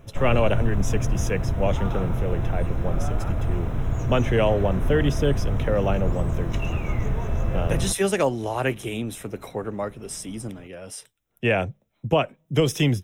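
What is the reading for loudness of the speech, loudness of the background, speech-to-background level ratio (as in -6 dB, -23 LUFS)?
-26.0 LUFS, -28.0 LUFS, 2.0 dB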